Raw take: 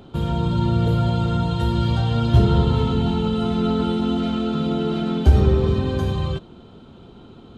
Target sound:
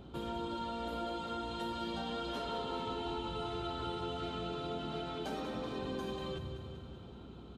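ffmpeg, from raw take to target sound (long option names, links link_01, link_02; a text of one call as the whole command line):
ffmpeg -i in.wav -filter_complex "[0:a]asplit=2[link_01][link_02];[link_02]aecho=0:1:191|382|573|764|955|1146|1337:0.299|0.173|0.1|0.0582|0.0338|0.0196|0.0114[link_03];[link_01][link_03]amix=inputs=2:normalize=0,afftfilt=real='re*lt(hypot(re,im),0.447)':imag='im*lt(hypot(re,im),0.447)':win_size=1024:overlap=0.75,highpass=frequency=58:poles=1,acompressor=threshold=-33dB:ratio=1.5,aeval=exprs='val(0)+0.00447*(sin(2*PI*60*n/s)+sin(2*PI*2*60*n/s)/2+sin(2*PI*3*60*n/s)/3+sin(2*PI*4*60*n/s)/4+sin(2*PI*5*60*n/s)/5)':channel_layout=same,volume=-8dB" out.wav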